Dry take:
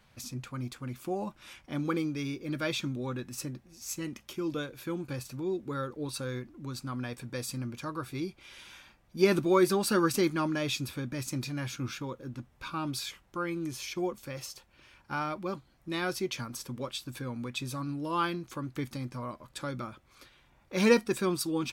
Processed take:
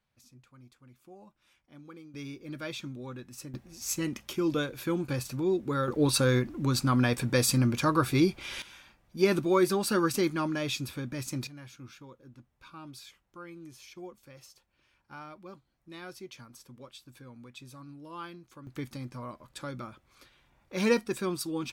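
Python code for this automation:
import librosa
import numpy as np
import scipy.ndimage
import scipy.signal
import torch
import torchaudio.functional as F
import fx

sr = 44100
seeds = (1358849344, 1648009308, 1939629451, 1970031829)

y = fx.gain(x, sr, db=fx.steps((0.0, -18.0), (2.14, -6.0), (3.54, 5.0), (5.88, 11.5), (8.62, -0.5), (11.47, -12.0), (18.67, -2.5)))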